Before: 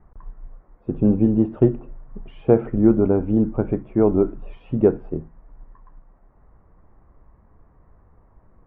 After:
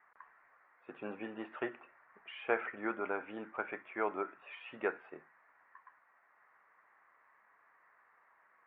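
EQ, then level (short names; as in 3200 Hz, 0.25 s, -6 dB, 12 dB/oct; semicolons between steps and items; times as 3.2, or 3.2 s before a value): resonant high-pass 1900 Hz, resonance Q 2; air absorption 370 m; +7.0 dB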